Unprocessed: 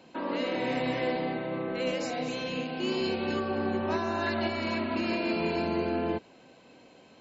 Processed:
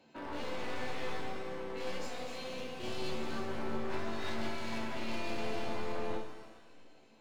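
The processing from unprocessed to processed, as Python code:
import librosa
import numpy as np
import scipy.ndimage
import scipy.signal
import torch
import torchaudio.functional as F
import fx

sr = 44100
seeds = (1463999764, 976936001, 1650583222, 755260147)

y = np.minimum(x, 2.0 * 10.0 ** (-31.0 / 20.0) - x)
y = fx.resonator_bank(y, sr, root=38, chord='sus4', decay_s=0.25)
y = fx.rev_shimmer(y, sr, seeds[0], rt60_s=1.3, semitones=7, shimmer_db=-8, drr_db=5.0)
y = y * librosa.db_to_amplitude(1.5)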